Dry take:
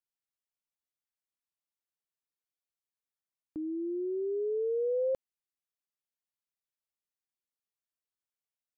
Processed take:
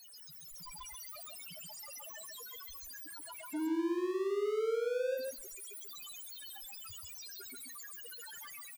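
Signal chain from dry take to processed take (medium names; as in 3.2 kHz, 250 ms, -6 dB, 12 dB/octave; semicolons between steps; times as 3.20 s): jump at every zero crossing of -45 dBFS; loudest bins only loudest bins 1; level rider gain up to 11 dB; power-law waveshaper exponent 0.5; peak limiter -28.5 dBFS, peak gain reduction 10.5 dB; delay 135 ms -3 dB; on a send at -16 dB: reverberation RT60 0.80 s, pre-delay 3 ms; on the sum: trim -4.5 dB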